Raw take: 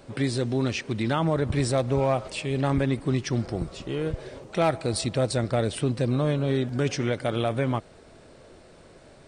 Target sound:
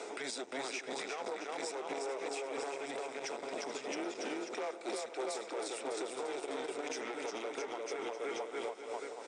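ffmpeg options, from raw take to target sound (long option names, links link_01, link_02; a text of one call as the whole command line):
ffmpeg -i in.wav -filter_complex "[0:a]afreqshift=-130,asplit=2[link_01][link_02];[link_02]aecho=0:1:350|665|948.5|1204|1433:0.631|0.398|0.251|0.158|0.1[link_03];[link_01][link_03]amix=inputs=2:normalize=0,asoftclip=type=tanh:threshold=-25dB,highpass=frequency=430:width=0.5412,highpass=frequency=430:width=1.3066,equalizer=frequency=550:width_type=q:width=4:gain=-5,equalizer=frequency=1100:width_type=q:width=4:gain=-8,equalizer=frequency=1700:width_type=q:width=4:gain=-8,equalizer=frequency=3000:width_type=q:width=4:gain=-9,equalizer=frequency=4300:width_type=q:width=4:gain=-10,lowpass=frequency=8000:width=0.5412,lowpass=frequency=8000:width=1.3066,tremolo=f=3:d=0.64,asplit=2[link_04][link_05];[link_05]aecho=0:1:427:0.119[link_06];[link_04][link_06]amix=inputs=2:normalize=0,acompressor=threshold=-44dB:ratio=6,alimiter=level_in=21dB:limit=-24dB:level=0:latency=1:release=412,volume=-21dB,volume=15.5dB" out.wav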